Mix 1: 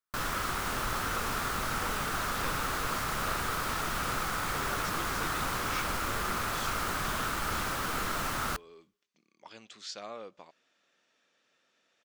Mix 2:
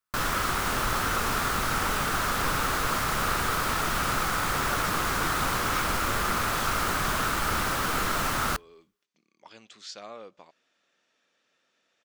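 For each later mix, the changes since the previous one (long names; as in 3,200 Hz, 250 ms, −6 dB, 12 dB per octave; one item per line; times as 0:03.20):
background +5.5 dB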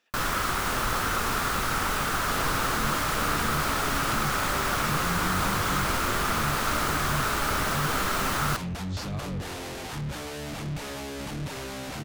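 speech: entry −0.90 s
second sound: unmuted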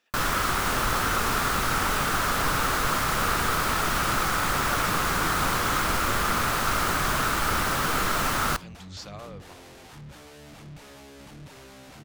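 first sound: send +10.0 dB
second sound −11.0 dB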